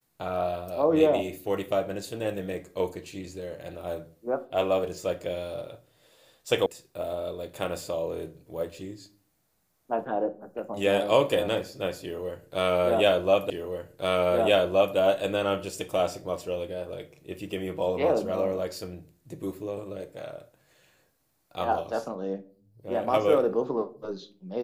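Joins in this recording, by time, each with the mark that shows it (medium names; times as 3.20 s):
6.66 s: sound stops dead
13.50 s: repeat of the last 1.47 s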